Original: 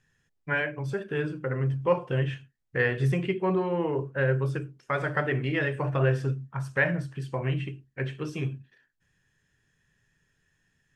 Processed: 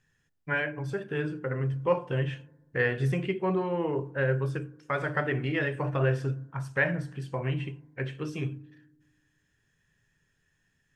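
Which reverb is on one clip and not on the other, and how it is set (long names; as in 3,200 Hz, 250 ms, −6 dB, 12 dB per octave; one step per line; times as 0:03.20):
feedback delay network reverb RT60 1.1 s, low-frequency decay 1.35×, high-frequency decay 0.25×, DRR 19.5 dB
level −1.5 dB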